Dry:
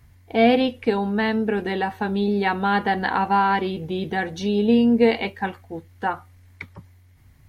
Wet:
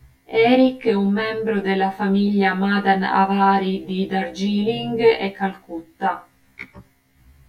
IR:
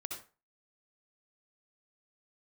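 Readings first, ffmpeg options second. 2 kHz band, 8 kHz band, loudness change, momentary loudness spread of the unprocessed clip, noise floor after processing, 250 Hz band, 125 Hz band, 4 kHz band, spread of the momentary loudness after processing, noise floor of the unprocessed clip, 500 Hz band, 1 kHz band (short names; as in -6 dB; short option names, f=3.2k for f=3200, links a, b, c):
+2.0 dB, n/a, +2.5 dB, 16 LU, -59 dBFS, +1.5 dB, +5.0 dB, +2.5 dB, 14 LU, -53 dBFS, +2.5 dB, +2.5 dB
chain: -filter_complex "[0:a]asplit=2[a][b];[1:a]atrim=start_sample=2205,atrim=end_sample=6174[c];[b][c]afir=irnorm=-1:irlink=0,volume=-15dB[d];[a][d]amix=inputs=2:normalize=0,afftfilt=real='re*1.73*eq(mod(b,3),0)':imag='im*1.73*eq(mod(b,3),0)':win_size=2048:overlap=0.75,volume=4dB"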